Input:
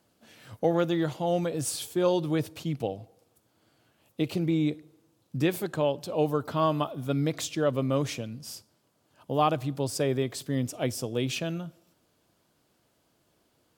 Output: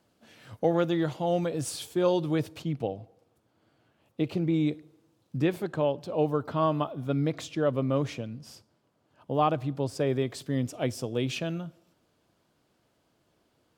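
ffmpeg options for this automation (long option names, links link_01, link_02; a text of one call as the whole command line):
ffmpeg -i in.wav -af "asetnsamples=nb_out_samples=441:pad=0,asendcmd='2.62 lowpass f 2300;4.54 lowpass f 5600;5.4 lowpass f 2300;10.07 lowpass f 4600',lowpass=frequency=5800:poles=1" out.wav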